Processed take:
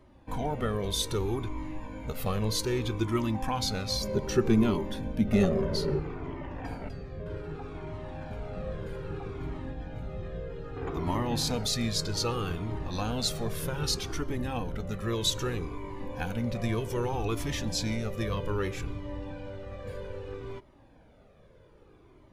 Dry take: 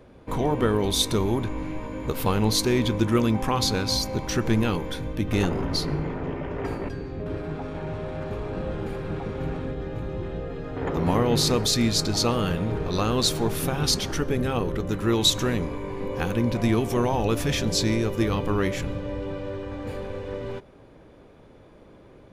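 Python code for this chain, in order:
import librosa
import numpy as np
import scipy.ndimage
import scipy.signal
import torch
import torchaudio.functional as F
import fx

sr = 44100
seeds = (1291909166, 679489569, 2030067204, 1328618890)

y = fx.small_body(x, sr, hz=(220.0, 390.0, 570.0), ring_ms=60, db=13, at=(4.01, 5.99))
y = fx.comb_cascade(y, sr, direction='falling', hz=0.63)
y = F.gain(torch.from_numpy(y), -2.5).numpy()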